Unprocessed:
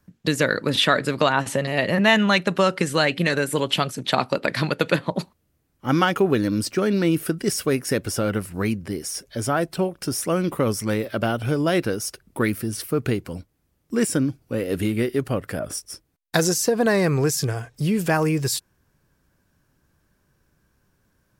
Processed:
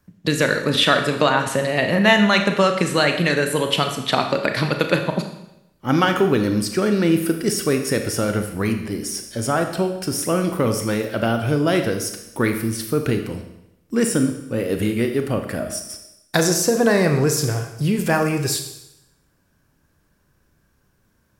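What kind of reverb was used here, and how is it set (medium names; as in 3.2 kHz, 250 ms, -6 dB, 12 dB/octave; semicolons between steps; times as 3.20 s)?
Schroeder reverb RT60 0.86 s, combs from 27 ms, DRR 5.5 dB; trim +1.5 dB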